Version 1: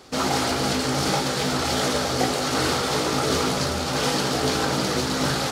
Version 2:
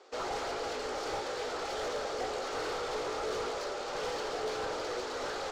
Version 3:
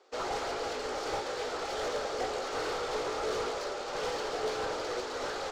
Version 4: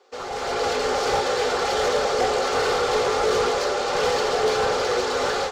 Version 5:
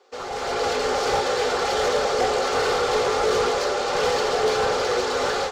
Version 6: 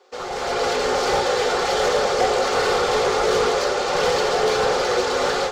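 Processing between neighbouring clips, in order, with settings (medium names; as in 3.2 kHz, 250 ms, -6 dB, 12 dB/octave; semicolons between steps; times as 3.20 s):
elliptic band-pass 420–7600 Hz, stop band 40 dB; saturation -23 dBFS, distortion -13 dB; tilt EQ -2.5 dB/octave; trim -7.5 dB
upward expansion 1.5:1, over -49 dBFS; trim +3 dB
in parallel at +3 dB: peak limiter -35 dBFS, peak gain reduction 11.5 dB; on the sum: level rider gain up to 11 dB; comb of notches 320 Hz; trim -2 dB
no audible change
reverberation RT60 0.95 s, pre-delay 6 ms, DRR 10.5 dB; trim +2 dB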